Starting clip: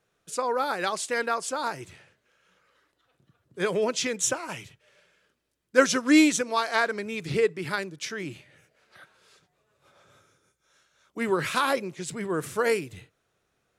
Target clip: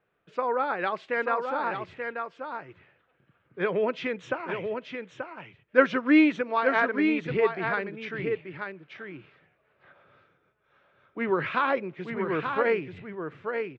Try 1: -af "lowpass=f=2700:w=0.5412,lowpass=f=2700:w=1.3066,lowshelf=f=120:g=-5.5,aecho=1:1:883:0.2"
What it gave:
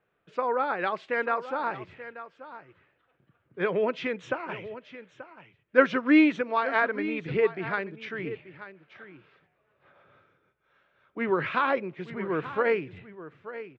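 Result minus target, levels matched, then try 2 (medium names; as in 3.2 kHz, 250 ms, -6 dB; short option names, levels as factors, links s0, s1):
echo-to-direct -8 dB
-af "lowpass=f=2700:w=0.5412,lowpass=f=2700:w=1.3066,lowshelf=f=120:g=-5.5,aecho=1:1:883:0.501"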